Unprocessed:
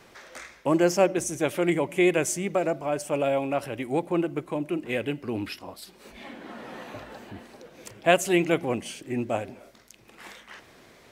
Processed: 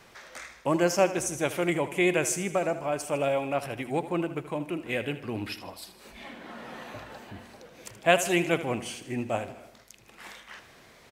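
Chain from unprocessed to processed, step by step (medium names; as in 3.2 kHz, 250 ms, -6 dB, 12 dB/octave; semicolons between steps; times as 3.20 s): peaking EQ 330 Hz -4.5 dB 1.4 oct; feedback delay 78 ms, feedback 56%, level -13.5 dB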